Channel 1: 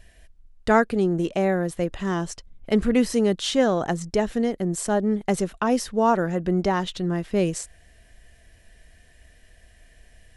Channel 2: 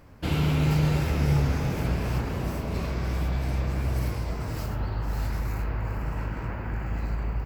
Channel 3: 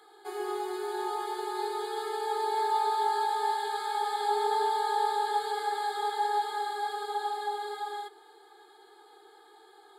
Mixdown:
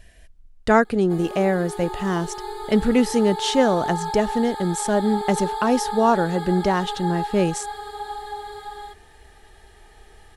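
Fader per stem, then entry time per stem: +2.0 dB, mute, 0.0 dB; 0.00 s, mute, 0.85 s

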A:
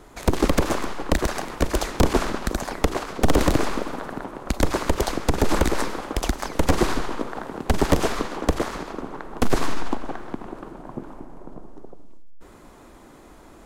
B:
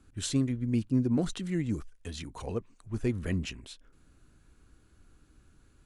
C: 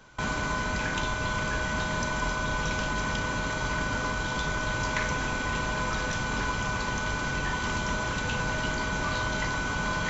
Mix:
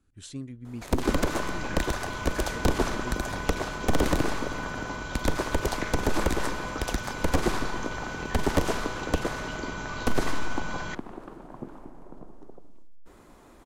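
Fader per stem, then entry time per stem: -5.5 dB, -10.0 dB, -6.5 dB; 0.65 s, 0.00 s, 0.85 s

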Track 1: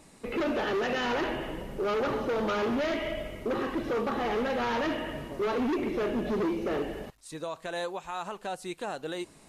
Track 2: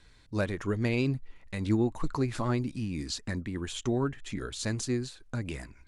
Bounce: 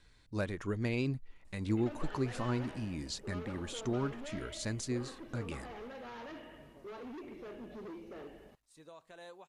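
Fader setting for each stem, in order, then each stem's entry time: -17.5 dB, -5.5 dB; 1.45 s, 0.00 s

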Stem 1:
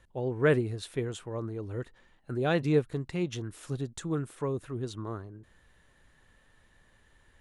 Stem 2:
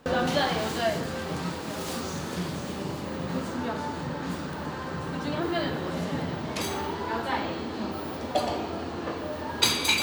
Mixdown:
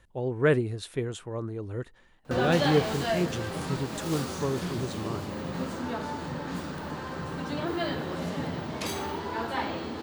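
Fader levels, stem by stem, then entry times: +1.5 dB, -2.0 dB; 0.00 s, 2.25 s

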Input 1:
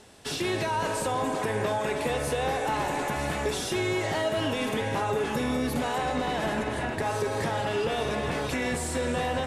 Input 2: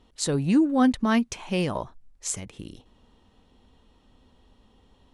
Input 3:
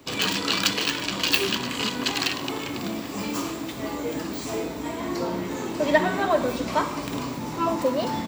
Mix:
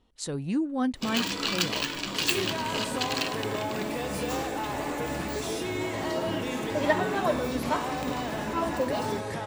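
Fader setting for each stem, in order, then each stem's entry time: -5.0 dB, -7.5 dB, -5.0 dB; 1.90 s, 0.00 s, 0.95 s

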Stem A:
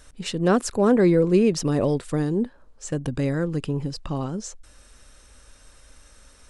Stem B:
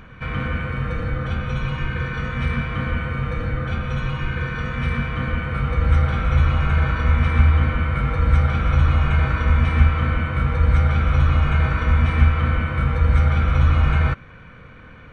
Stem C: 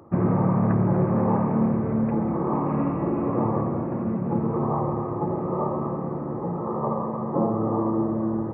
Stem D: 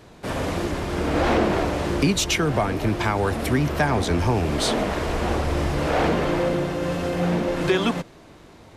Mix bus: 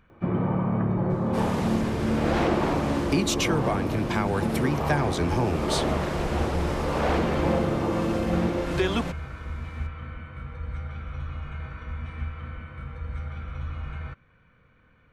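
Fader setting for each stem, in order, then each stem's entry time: mute, -17.5 dB, -4.0 dB, -4.5 dB; mute, 0.00 s, 0.10 s, 1.10 s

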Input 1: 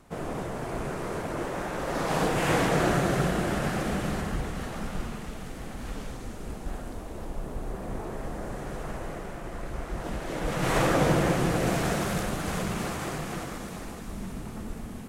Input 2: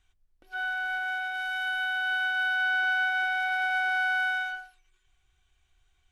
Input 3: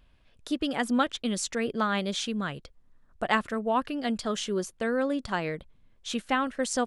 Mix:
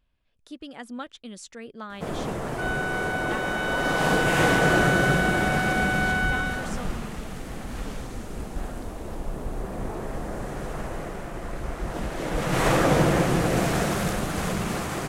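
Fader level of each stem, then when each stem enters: +3.0 dB, +0.5 dB, -11.0 dB; 1.90 s, 2.05 s, 0.00 s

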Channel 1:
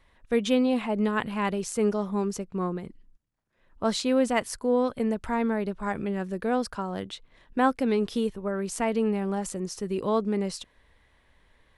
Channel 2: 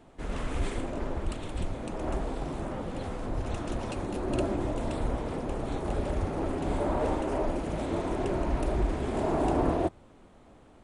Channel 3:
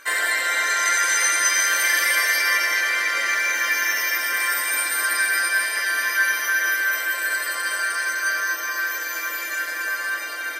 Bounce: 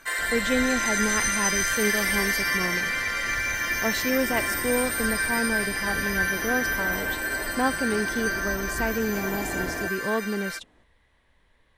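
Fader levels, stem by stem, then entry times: -2.0 dB, -7.0 dB, -5.5 dB; 0.00 s, 0.00 s, 0.00 s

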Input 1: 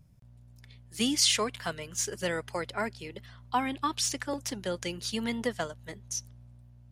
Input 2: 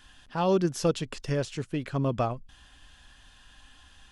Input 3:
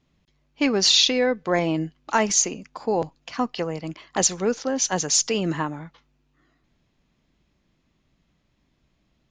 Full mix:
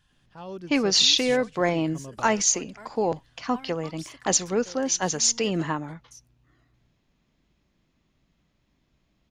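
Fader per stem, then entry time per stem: -14.5 dB, -14.0 dB, -1.5 dB; 0.00 s, 0.00 s, 0.10 s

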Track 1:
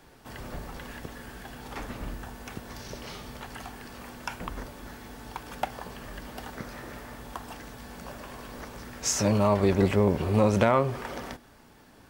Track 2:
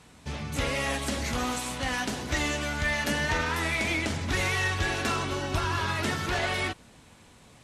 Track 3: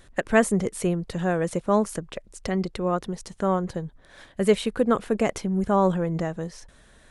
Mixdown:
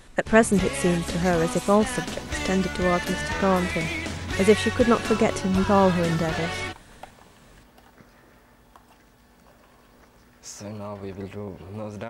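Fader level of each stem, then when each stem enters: -12.5 dB, -1.5 dB, +2.0 dB; 1.40 s, 0.00 s, 0.00 s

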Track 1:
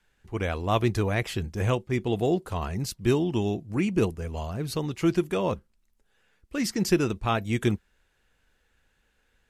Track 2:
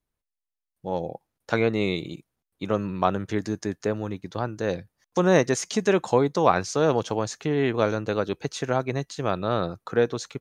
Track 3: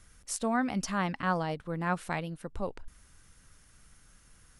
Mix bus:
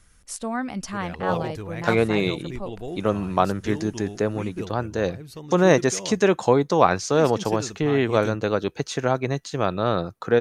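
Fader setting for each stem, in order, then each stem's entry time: -9.5 dB, +2.5 dB, +1.0 dB; 0.60 s, 0.35 s, 0.00 s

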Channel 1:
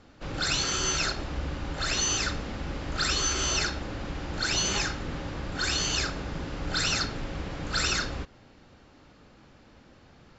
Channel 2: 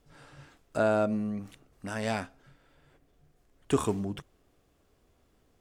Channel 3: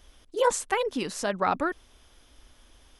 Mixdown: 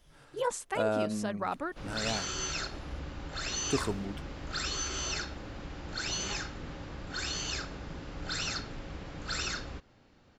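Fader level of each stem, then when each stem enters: -7.5 dB, -4.5 dB, -8.5 dB; 1.55 s, 0.00 s, 0.00 s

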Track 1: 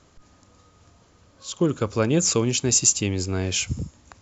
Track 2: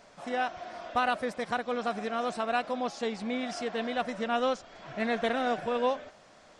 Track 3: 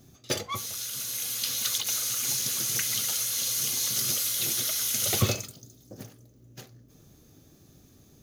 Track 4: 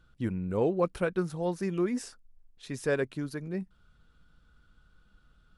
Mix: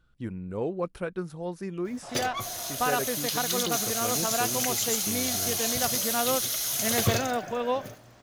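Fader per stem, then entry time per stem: -14.5 dB, 0.0 dB, -1.0 dB, -3.5 dB; 2.05 s, 1.85 s, 1.85 s, 0.00 s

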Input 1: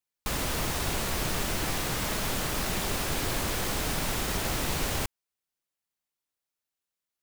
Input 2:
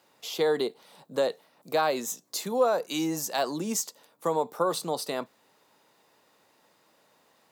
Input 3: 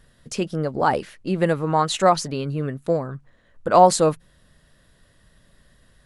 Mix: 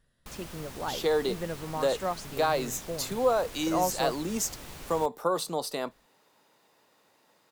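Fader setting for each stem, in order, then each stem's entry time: -14.5 dB, -1.0 dB, -15.0 dB; 0.00 s, 0.65 s, 0.00 s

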